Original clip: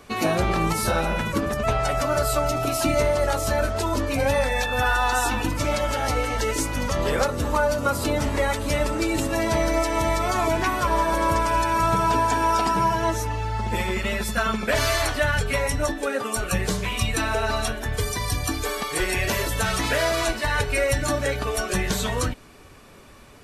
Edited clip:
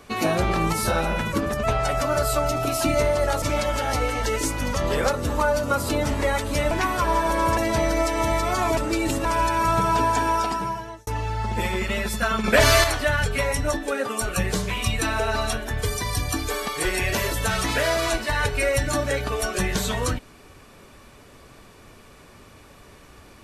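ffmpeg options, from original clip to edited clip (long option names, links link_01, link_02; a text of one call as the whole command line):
ffmpeg -i in.wav -filter_complex "[0:a]asplit=9[link_01][link_02][link_03][link_04][link_05][link_06][link_07][link_08][link_09];[link_01]atrim=end=3.422[link_10];[link_02]atrim=start=5.568:end=8.862[link_11];[link_03]atrim=start=10.538:end=11.402[link_12];[link_04]atrim=start=9.338:end=10.542[link_13];[link_05]atrim=start=8.858:end=9.342[link_14];[link_06]atrim=start=11.398:end=13.22,asetpts=PTS-STARTPTS,afade=type=out:start_time=0.972:duration=0.85[link_15];[link_07]atrim=start=13.22:end=14.592,asetpts=PTS-STARTPTS,afade=type=in:duration=0.004:curve=hsin[link_16];[link_08]atrim=start=14.588:end=14.992,asetpts=PTS-STARTPTS,volume=6dB[link_17];[link_09]atrim=start=14.988[link_18];[link_10][link_11]acrossfade=duration=0.004:curve1=hsin:curve2=hsin[link_19];[link_19][link_12]acrossfade=duration=0.004:curve1=hsin:curve2=hsin[link_20];[link_20][link_13]acrossfade=duration=0.004:curve1=hsin:curve2=hsin[link_21];[link_21][link_14]acrossfade=duration=0.004:curve1=hsin:curve2=hsin[link_22];[link_15][link_16]concat=n=2:v=0:a=1[link_23];[link_22][link_23]acrossfade=duration=0.004:curve1=hsin:curve2=hsin[link_24];[link_24][link_17]acrossfade=duration=0.004:curve1=hsin:curve2=hsin[link_25];[link_25][link_18]acrossfade=duration=0.004:curve1=hsin:curve2=hsin" out.wav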